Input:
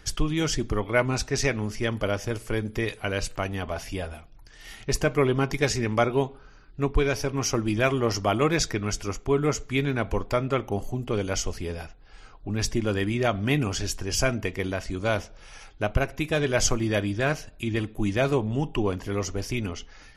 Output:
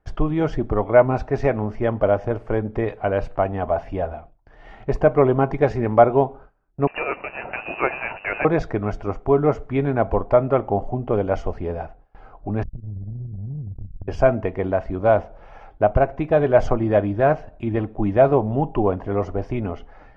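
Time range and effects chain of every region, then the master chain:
6.87–8.45 HPF 110 Hz 6 dB/oct + companded quantiser 4-bit + inverted band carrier 2800 Hz
12.63–14.08 inverse Chebyshev low-pass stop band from 680 Hz, stop band 70 dB + transient shaper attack +11 dB, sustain -10 dB + compressor, threshold -31 dBFS
whole clip: gate with hold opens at -39 dBFS; LPF 1300 Hz 12 dB/oct; bell 700 Hz +10 dB 0.91 oct; gain +3.5 dB

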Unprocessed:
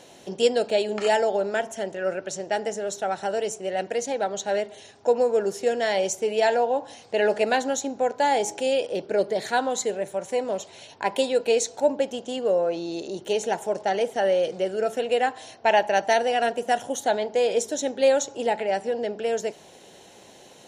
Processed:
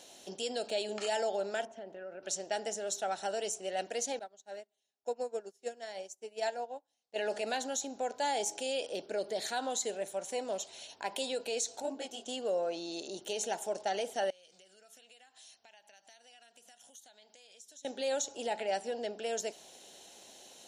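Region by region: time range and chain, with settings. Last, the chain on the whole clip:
1.65–2.23 HPF 110 Hz + compressor 4:1, threshold -30 dBFS + tape spacing loss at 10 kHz 37 dB
4.19–7.16 dynamic EQ 3300 Hz, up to -5 dB, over -45 dBFS, Q 2.2 + upward expander 2.5:1, over -38 dBFS
11.82–12.26 comb 2.7 ms, depth 52% + detuned doubles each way 27 cents
14.3–17.85 passive tone stack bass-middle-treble 5-5-5 + compressor 8:1, threshold -49 dBFS
whole clip: graphic EQ 125/250/500/1000/2000 Hz -7/+8/-11/-8/-7 dB; limiter -23.5 dBFS; resonant low shelf 380 Hz -11.5 dB, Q 1.5

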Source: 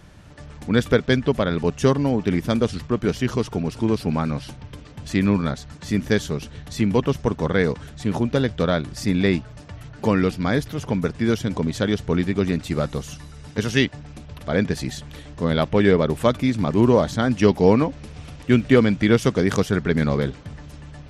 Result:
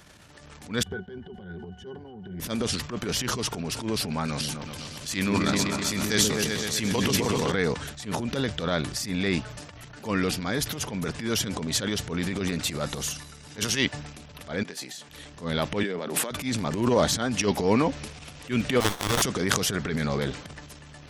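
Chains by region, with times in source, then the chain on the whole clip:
0.83–2.4 compressor 4:1, threshold -17 dBFS + octave resonator F#, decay 0.11 s
4.28–7.52 high shelf 2400 Hz +8.5 dB + repeats that get brighter 0.127 s, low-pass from 400 Hz, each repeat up 2 oct, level -3 dB
14.63–15.09 HPF 230 Hz + doubler 23 ms -13 dB + compressor 8:1, threshold -40 dBFS
15.83–16.31 elliptic high-pass 170 Hz + negative-ratio compressor -29 dBFS
18.8–19.22 HPF 540 Hz 24 dB/oct + resonant high shelf 2400 Hz +11 dB, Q 3 + running maximum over 17 samples
whole clip: transient shaper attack -11 dB, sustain +8 dB; tilt +2 dB/oct; gain -2.5 dB

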